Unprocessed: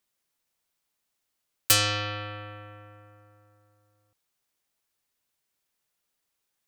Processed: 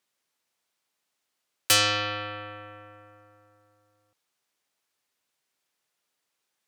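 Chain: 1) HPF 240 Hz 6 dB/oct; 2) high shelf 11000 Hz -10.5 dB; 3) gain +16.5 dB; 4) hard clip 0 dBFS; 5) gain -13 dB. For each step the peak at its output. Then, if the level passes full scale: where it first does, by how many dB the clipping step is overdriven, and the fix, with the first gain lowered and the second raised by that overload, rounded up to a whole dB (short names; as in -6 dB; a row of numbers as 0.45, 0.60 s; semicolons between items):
-6.0, -9.5, +7.0, 0.0, -13.0 dBFS; step 3, 7.0 dB; step 3 +9.5 dB, step 5 -6 dB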